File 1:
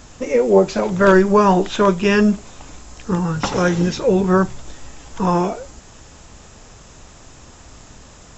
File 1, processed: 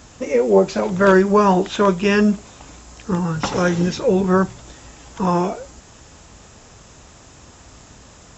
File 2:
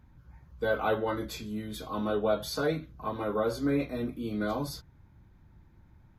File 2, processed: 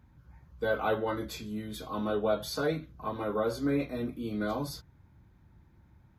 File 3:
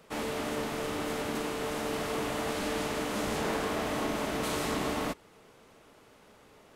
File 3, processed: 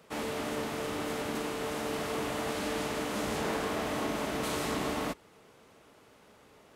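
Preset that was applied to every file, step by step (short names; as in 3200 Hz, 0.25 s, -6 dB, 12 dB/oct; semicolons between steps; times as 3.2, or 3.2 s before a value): HPF 44 Hz; gain -1 dB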